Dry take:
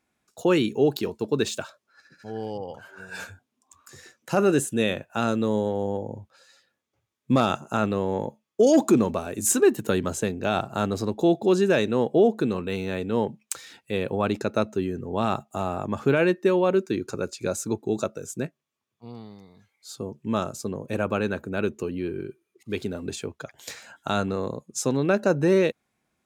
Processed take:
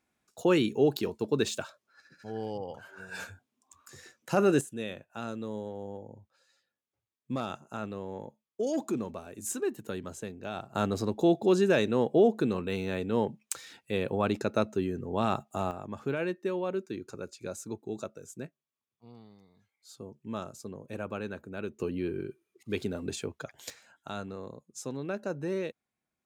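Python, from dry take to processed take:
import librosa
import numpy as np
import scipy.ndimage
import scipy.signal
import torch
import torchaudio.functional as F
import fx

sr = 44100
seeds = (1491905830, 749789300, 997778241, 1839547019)

y = fx.gain(x, sr, db=fx.steps((0.0, -3.5), (4.61, -13.0), (10.75, -3.5), (15.71, -11.0), (21.8, -3.0), (23.7, -13.0)))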